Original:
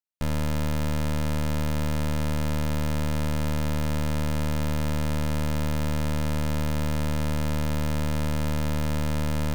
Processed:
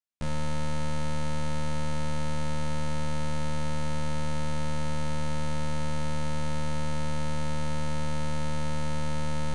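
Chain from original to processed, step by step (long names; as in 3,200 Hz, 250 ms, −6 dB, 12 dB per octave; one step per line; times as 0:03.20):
downsampling to 22,050 Hz
flutter between parallel walls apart 3.2 metres, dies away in 0.29 s
level −5 dB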